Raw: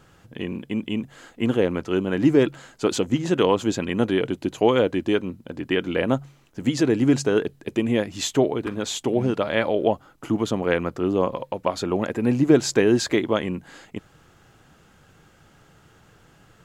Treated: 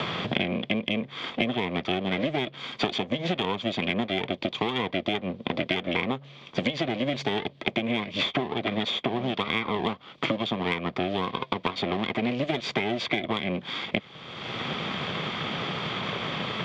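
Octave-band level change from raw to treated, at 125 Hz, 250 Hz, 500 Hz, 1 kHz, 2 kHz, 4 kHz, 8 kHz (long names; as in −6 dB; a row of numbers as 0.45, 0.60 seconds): −5.0, −7.0, −8.0, 0.0, +1.5, +4.0, −17.5 decibels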